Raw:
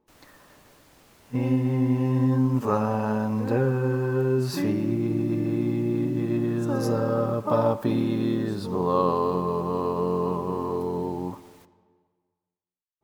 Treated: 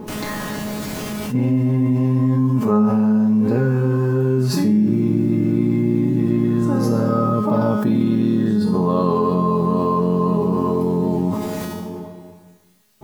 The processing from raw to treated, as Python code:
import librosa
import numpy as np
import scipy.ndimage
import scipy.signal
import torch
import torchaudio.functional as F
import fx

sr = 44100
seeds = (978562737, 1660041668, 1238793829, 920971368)

y = fx.peak_eq(x, sr, hz=180.0, db=11.5, octaves=1.7)
y = fx.comb_fb(y, sr, f0_hz=210.0, decay_s=0.69, harmonics='all', damping=0.0, mix_pct=90)
y = fx.env_flatten(y, sr, amount_pct=70)
y = y * 10.0 ** (8.5 / 20.0)